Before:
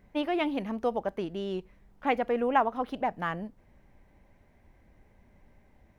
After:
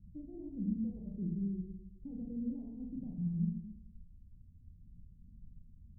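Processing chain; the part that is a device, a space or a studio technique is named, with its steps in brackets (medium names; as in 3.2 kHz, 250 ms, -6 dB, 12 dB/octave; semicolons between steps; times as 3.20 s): reverb removal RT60 1.4 s; club heard from the street (peak limiter -22 dBFS, peak gain reduction 10 dB; low-pass 180 Hz 24 dB/octave; reverberation RT60 1.0 s, pre-delay 30 ms, DRR -1.5 dB); trim +5.5 dB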